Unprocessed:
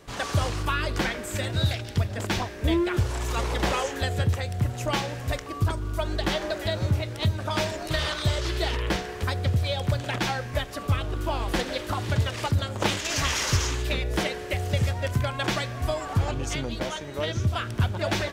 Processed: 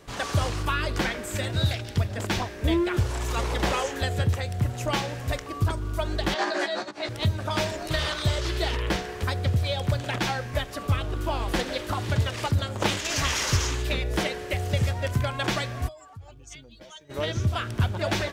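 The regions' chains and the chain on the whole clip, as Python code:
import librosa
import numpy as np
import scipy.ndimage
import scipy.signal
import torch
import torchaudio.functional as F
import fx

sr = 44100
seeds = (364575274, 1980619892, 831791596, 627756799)

y = fx.chain(x, sr, fx.over_compress(threshold_db=-32.0, ratio=-1.0),
    fx.cabinet(low_hz=240.0, low_slope=24, high_hz=8500.0, hz=(460.0, 760.0, 1100.0, 1700.0, 4400.0), db=(-3, 7, 5, 7, 7)),
    fx.doubler(ms=14.0, db=-2.0), at=(6.34, 7.09))
y = fx.spec_expand(y, sr, power=1.6, at=(15.87, 17.09), fade=0.02)
y = fx.pre_emphasis(y, sr, coefficient=0.9, at=(15.87, 17.09), fade=0.02)
y = fx.dmg_crackle(y, sr, seeds[0], per_s=330.0, level_db=-63.0, at=(15.87, 17.09), fade=0.02)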